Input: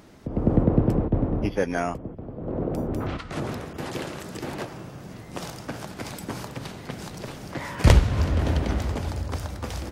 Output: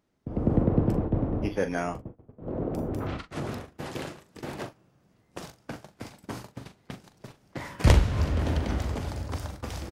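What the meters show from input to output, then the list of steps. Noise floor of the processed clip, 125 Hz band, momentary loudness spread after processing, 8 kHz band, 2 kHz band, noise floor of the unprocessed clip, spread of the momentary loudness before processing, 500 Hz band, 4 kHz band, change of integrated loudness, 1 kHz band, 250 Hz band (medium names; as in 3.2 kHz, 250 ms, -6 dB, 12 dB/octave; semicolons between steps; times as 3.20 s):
-66 dBFS, -3.0 dB, 20 LU, -4.5 dB, -4.0 dB, -41 dBFS, 16 LU, -3.5 dB, -4.0 dB, -2.0 dB, -3.5 dB, -3.5 dB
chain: gate -33 dBFS, range -21 dB; doubling 41 ms -10 dB; trim -3.5 dB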